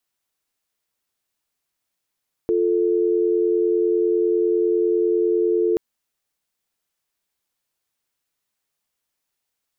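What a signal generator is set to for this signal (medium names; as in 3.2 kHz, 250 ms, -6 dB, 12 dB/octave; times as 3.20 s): call progress tone dial tone, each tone -19 dBFS 3.28 s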